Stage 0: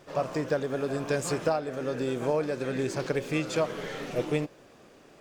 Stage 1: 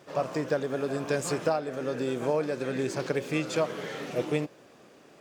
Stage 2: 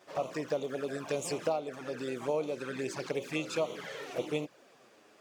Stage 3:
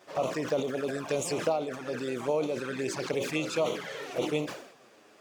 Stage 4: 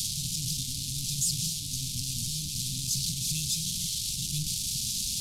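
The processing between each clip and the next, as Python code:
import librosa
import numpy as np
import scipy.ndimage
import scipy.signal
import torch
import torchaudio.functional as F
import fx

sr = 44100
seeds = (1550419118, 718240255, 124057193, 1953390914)

y1 = scipy.signal.sosfilt(scipy.signal.butter(2, 110.0, 'highpass', fs=sr, output='sos'), x)
y2 = fx.low_shelf(y1, sr, hz=310.0, db=-10.5)
y2 = fx.env_flanger(y2, sr, rest_ms=11.7, full_db=-28.5)
y3 = fx.sustainer(y2, sr, db_per_s=80.0)
y3 = y3 * librosa.db_to_amplitude(3.0)
y4 = fx.delta_mod(y3, sr, bps=64000, step_db=-25.0)
y4 = scipy.signal.sosfilt(scipy.signal.cheby2(4, 50, [360.0, 1800.0], 'bandstop', fs=sr, output='sos'), y4)
y4 = y4 * librosa.db_to_amplitude(6.5)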